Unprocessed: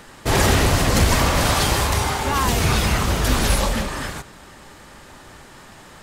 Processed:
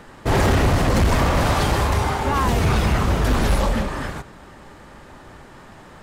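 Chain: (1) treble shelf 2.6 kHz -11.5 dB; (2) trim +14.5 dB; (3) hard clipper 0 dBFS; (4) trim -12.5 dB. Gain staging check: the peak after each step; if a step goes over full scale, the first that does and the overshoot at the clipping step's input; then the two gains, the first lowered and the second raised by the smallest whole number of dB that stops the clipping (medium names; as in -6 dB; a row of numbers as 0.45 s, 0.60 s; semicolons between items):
-6.0 dBFS, +8.5 dBFS, 0.0 dBFS, -12.5 dBFS; step 2, 8.5 dB; step 2 +5.5 dB, step 4 -3.5 dB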